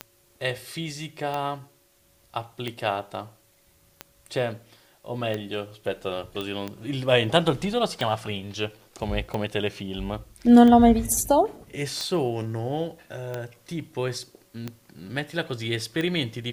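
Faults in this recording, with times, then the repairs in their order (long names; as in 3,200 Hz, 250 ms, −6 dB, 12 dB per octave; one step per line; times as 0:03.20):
scratch tick 45 rpm −16 dBFS
0:06.41: click −18 dBFS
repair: click removal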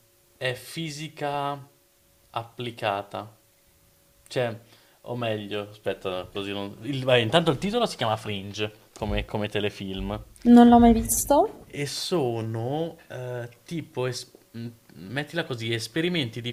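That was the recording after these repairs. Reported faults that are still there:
none of them is left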